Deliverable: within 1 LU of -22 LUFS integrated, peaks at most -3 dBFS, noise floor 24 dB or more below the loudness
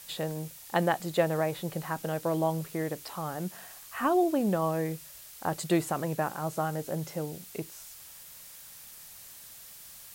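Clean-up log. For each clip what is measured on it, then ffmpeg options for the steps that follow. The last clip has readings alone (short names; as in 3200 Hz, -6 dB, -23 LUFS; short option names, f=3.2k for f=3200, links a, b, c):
noise floor -49 dBFS; noise floor target -55 dBFS; loudness -31.0 LUFS; peak -11.0 dBFS; loudness target -22.0 LUFS
-> -af "afftdn=nr=6:nf=-49"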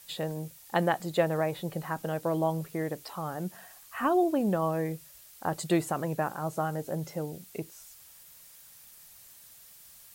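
noise floor -53 dBFS; noise floor target -55 dBFS
-> -af "afftdn=nr=6:nf=-53"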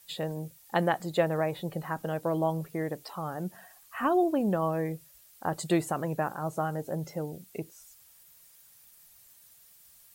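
noise floor -58 dBFS; loudness -31.0 LUFS; peak -11.0 dBFS; loudness target -22.0 LUFS
-> -af "volume=9dB,alimiter=limit=-3dB:level=0:latency=1"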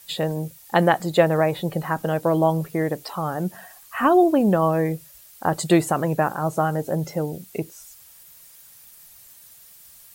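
loudness -22.0 LUFS; peak -3.0 dBFS; noise floor -49 dBFS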